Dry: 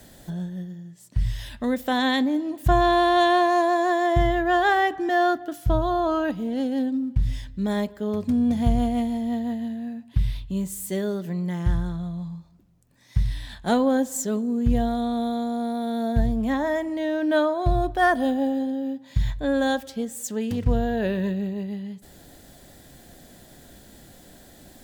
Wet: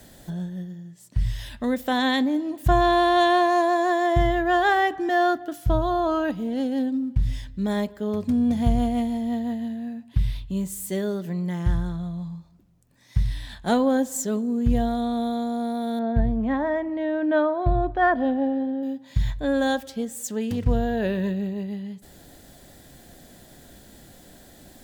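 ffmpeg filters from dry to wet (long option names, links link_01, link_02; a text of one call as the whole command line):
ffmpeg -i in.wav -filter_complex "[0:a]asettb=1/sr,asplit=3[link_01][link_02][link_03];[link_01]atrim=end=15.994[link_04];[link_02]atrim=start=15.99:end=18.83,asetpts=PTS-STARTPTS,afade=type=in:duration=0.004:curve=qsin,afade=type=out:start_time=2.836:duration=0.004:curve=qsin,lowpass=2200[link_05];[link_03]atrim=start=18.826[link_06];[link_04][link_05]acrossfade=duration=0.004:curve1=hsin:curve2=qsin[link_07];[link_07][link_06]acrossfade=duration=0.004:curve1=qsin:curve2=hsin" out.wav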